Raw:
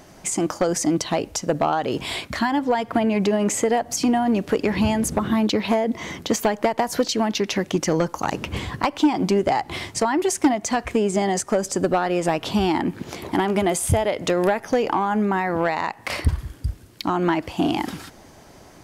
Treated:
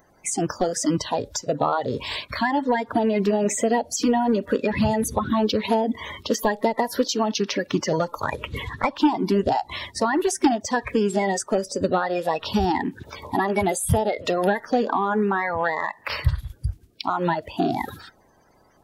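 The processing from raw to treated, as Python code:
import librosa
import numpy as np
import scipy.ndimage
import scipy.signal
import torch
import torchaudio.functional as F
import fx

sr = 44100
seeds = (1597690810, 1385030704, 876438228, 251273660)

y = fx.spec_quant(x, sr, step_db=30)
y = fx.noise_reduce_blind(y, sr, reduce_db=11)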